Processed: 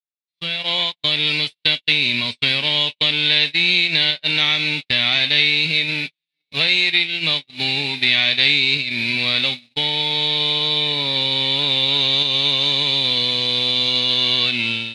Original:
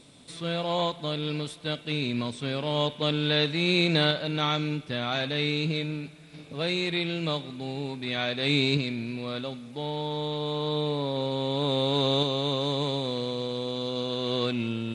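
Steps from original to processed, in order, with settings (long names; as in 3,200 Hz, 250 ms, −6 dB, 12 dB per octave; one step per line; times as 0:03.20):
spectral envelope flattened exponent 0.6
downward compressor 12 to 1, threshold −33 dBFS, peak gain reduction 14.5 dB
delay with a high-pass on its return 988 ms, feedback 62%, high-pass 2,800 Hz, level −9.5 dB
noise reduction from a noise print of the clip's start 6 dB
noise gate −39 dBFS, range −54 dB
automatic gain control gain up to 15.5 dB
flat-topped bell 3,100 Hz +15.5 dB
level −6.5 dB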